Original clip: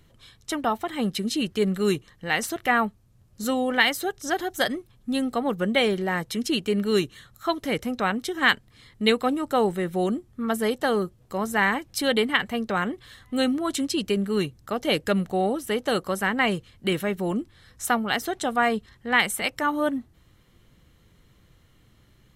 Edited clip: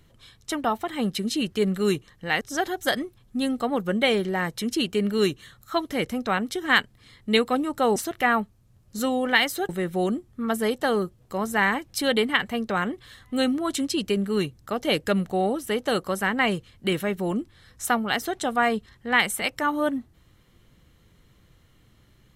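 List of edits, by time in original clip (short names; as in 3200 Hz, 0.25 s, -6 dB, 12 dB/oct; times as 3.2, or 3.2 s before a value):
2.41–4.14 move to 9.69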